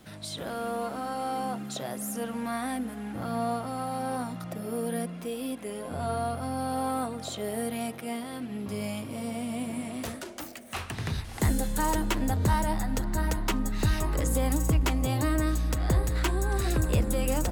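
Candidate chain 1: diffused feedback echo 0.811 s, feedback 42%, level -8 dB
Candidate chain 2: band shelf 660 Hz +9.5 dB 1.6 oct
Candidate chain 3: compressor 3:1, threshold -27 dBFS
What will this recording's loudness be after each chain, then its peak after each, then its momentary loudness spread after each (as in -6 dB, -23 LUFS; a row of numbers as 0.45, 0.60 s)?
-30.0, -26.0, -33.0 LUFS; -14.0, -9.0, -17.5 dBFS; 9, 9, 5 LU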